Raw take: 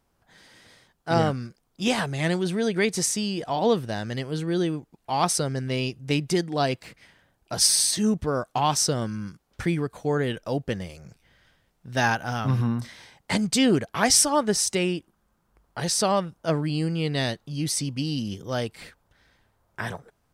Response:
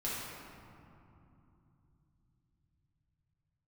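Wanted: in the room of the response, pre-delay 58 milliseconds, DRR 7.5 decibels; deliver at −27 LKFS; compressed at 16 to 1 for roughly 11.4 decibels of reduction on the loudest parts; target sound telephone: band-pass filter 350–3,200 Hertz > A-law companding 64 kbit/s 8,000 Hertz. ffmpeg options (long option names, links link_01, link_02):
-filter_complex "[0:a]acompressor=threshold=-27dB:ratio=16,asplit=2[link_01][link_02];[1:a]atrim=start_sample=2205,adelay=58[link_03];[link_02][link_03]afir=irnorm=-1:irlink=0,volume=-12dB[link_04];[link_01][link_04]amix=inputs=2:normalize=0,highpass=350,lowpass=3200,volume=9.5dB" -ar 8000 -c:a pcm_alaw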